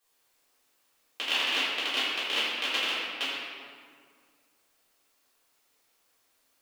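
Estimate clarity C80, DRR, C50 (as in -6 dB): -0.5 dB, -13.0 dB, -2.5 dB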